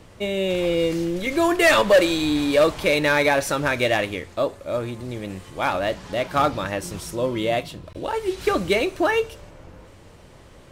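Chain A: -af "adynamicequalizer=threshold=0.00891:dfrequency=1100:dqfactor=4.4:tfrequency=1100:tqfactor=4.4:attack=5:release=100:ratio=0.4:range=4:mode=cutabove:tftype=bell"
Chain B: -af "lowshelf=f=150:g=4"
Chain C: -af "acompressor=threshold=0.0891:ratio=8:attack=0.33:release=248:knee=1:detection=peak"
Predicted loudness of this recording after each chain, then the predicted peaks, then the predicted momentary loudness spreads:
-22.0 LUFS, -21.5 LUFS, -29.0 LUFS; -9.0 dBFS, -8.5 dBFS, -17.0 dBFS; 12 LU, 12 LU, 16 LU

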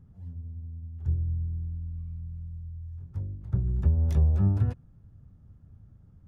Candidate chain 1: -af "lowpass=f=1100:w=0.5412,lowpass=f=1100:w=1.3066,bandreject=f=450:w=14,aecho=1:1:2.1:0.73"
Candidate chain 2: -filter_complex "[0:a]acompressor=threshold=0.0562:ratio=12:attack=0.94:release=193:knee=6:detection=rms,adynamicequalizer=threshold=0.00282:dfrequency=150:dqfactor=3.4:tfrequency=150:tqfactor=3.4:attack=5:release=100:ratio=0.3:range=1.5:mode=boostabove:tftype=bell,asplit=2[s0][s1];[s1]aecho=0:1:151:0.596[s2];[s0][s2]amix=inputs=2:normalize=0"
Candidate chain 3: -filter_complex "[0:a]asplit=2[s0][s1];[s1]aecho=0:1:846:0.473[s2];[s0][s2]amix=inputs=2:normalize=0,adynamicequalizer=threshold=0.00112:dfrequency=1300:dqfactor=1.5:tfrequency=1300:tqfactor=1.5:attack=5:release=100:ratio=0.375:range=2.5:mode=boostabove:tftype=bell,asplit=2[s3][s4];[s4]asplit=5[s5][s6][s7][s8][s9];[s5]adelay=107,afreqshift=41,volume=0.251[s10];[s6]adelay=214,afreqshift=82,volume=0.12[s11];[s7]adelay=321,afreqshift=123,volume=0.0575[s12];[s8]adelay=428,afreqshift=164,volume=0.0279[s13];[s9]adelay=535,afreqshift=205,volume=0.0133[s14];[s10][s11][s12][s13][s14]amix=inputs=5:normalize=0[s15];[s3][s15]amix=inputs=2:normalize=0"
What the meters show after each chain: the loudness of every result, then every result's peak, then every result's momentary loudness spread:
-26.5 LUFS, -35.0 LUFS, -28.5 LUFS; -9.5 dBFS, -19.0 dBFS, -11.5 dBFS; 17 LU, 23 LU, 16 LU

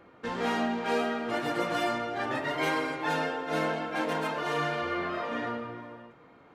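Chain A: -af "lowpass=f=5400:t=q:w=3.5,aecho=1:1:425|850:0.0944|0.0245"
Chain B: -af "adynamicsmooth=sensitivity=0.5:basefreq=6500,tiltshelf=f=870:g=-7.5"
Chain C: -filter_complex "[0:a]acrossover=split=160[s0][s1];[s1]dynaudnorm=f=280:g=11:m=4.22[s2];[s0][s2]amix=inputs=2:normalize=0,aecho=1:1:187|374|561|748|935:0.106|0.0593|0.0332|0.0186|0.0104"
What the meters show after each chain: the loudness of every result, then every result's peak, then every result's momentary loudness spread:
-30.0 LUFS, -29.5 LUFS, -20.5 LUFS; -15.0 dBFS, -14.5 dBFS, -5.5 dBFS; 7 LU, 6 LU, 11 LU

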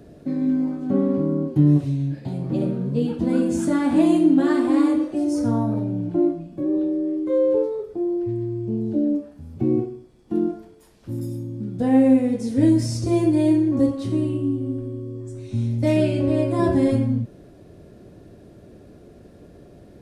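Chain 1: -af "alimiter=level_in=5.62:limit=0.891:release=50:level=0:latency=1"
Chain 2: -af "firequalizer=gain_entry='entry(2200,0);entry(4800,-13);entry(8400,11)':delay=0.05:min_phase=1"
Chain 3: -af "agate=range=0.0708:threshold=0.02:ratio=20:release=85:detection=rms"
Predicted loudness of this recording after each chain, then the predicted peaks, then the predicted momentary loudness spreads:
-10.0 LUFS, -21.5 LUFS, -21.5 LUFS; -1.0 dBFS, -6.5 dBFS, -6.5 dBFS; 8 LU, 12 LU, 12 LU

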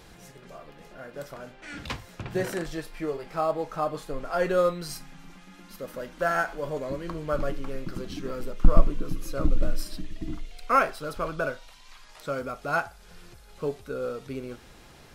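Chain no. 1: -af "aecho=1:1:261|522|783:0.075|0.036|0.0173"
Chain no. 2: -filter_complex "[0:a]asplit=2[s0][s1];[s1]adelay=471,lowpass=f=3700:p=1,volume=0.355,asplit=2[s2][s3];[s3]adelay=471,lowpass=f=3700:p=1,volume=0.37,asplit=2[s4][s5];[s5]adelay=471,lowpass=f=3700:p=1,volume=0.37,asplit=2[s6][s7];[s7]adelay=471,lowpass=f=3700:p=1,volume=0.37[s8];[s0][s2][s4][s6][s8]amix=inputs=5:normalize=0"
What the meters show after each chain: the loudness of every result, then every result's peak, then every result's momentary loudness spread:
-30.5 LUFS, -30.5 LUFS; -3.0 dBFS, -3.0 dBFS; 22 LU, 16 LU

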